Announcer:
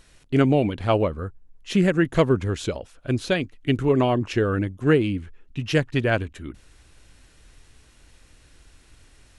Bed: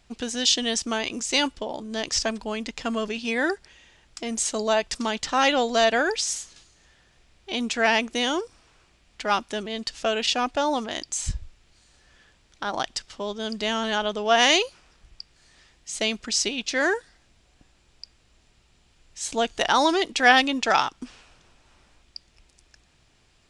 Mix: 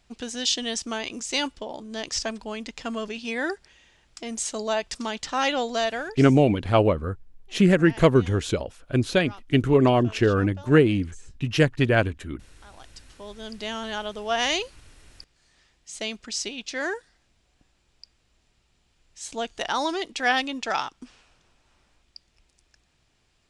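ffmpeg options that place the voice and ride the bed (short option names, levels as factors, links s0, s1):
-filter_complex "[0:a]adelay=5850,volume=1.19[s0];[1:a]volume=3.98,afade=t=out:st=5.7:d=0.58:silence=0.125893,afade=t=in:st=12.84:d=0.77:silence=0.16788[s1];[s0][s1]amix=inputs=2:normalize=0"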